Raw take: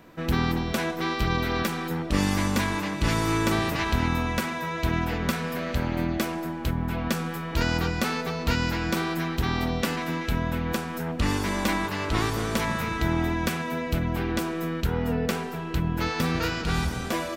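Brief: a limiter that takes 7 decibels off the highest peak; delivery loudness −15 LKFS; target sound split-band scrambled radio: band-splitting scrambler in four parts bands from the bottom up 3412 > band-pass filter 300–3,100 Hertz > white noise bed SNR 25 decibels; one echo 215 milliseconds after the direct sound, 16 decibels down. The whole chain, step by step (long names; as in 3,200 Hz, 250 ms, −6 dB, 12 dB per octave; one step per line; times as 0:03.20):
brickwall limiter −17.5 dBFS
single-tap delay 215 ms −16 dB
band-splitting scrambler in four parts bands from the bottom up 3412
band-pass filter 300–3,100 Hz
white noise bed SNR 25 dB
level +13.5 dB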